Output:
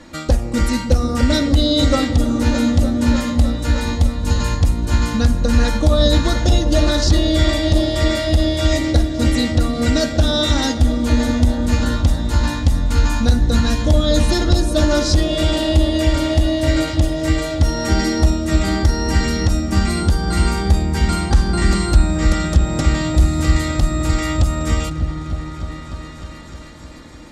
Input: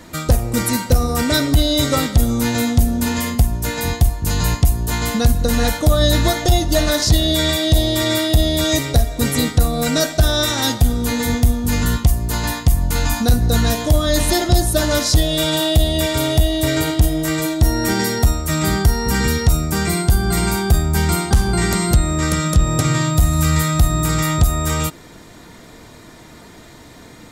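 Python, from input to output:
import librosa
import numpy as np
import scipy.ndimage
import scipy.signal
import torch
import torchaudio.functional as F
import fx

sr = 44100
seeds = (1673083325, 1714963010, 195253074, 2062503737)

p1 = scipy.signal.sosfilt(scipy.signal.butter(2, 6500.0, 'lowpass', fs=sr, output='sos'), x)
p2 = p1 + 0.51 * np.pad(p1, (int(3.6 * sr / 1000.0), 0))[:len(p1)]
p3 = p2 + fx.echo_opening(p2, sr, ms=303, hz=200, octaves=1, feedback_pct=70, wet_db=-3, dry=0)
p4 = fx.doppler_dist(p3, sr, depth_ms=0.12)
y = p4 * 10.0 ** (-2.0 / 20.0)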